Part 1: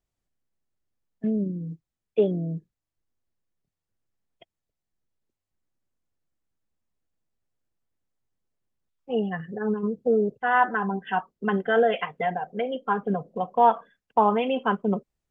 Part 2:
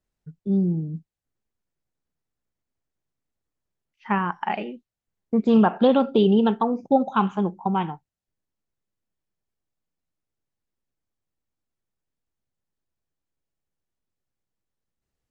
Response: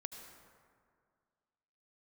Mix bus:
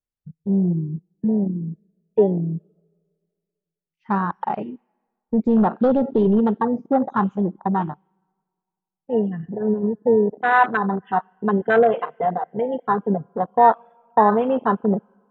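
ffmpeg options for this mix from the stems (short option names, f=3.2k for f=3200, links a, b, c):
-filter_complex "[0:a]agate=range=-12dB:threshold=-49dB:ratio=16:detection=peak,acontrast=40,volume=-1.5dB,asplit=2[a][b];[b]volume=-10.5dB[c];[1:a]bandreject=f=690:w=22,asoftclip=type=tanh:threshold=-15dB,volume=3dB,asplit=2[d][e];[e]volume=-17.5dB[f];[2:a]atrim=start_sample=2205[g];[c][f]amix=inputs=2:normalize=0[h];[h][g]afir=irnorm=-1:irlink=0[i];[a][d][i]amix=inputs=3:normalize=0,afwtdn=0.0891"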